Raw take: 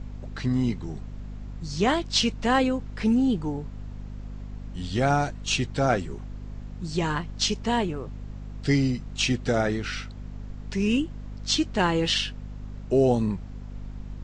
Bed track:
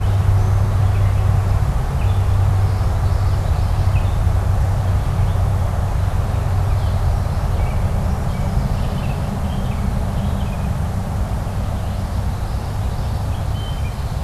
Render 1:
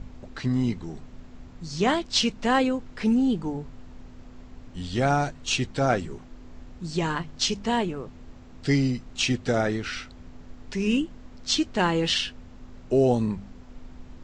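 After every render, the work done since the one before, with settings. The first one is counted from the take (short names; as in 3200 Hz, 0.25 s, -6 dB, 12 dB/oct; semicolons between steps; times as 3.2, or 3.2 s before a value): de-hum 50 Hz, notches 4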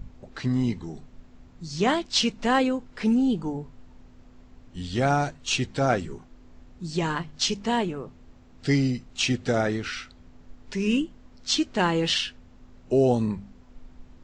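noise print and reduce 6 dB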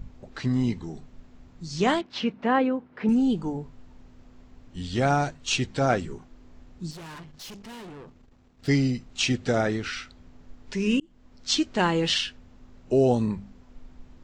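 2.01–3.09 BPF 130–2000 Hz; 6.91–8.68 tube stage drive 40 dB, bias 0.8; 11–11.58 fade in equal-power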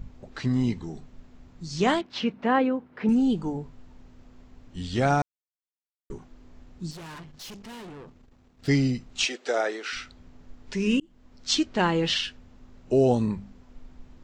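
5.22–6.1 mute; 9.25–9.93 HPF 390 Hz 24 dB/oct; 11.63–12.24 air absorption 56 m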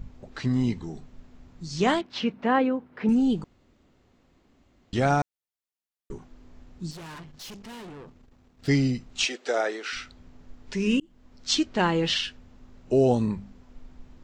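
3.44–4.93 room tone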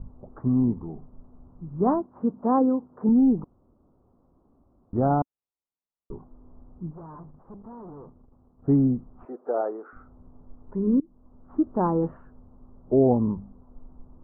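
steep low-pass 1200 Hz 48 dB/oct; dynamic EQ 270 Hz, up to +4 dB, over -34 dBFS, Q 2.8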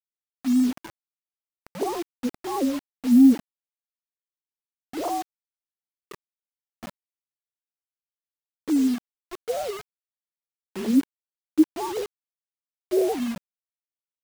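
sine-wave speech; bit-crush 6-bit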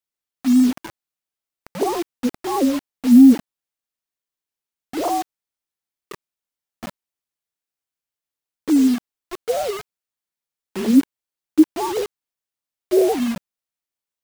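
gain +6 dB; limiter -3 dBFS, peak gain reduction 2 dB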